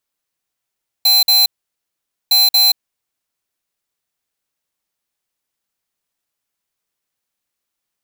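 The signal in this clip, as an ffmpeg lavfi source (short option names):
-f lavfi -i "aevalsrc='0.282*(2*lt(mod(4080*t,1),0.5)-1)*clip(min(mod(mod(t,1.26),0.23),0.18-mod(mod(t,1.26),0.23))/0.005,0,1)*lt(mod(t,1.26),0.46)':d=2.52:s=44100"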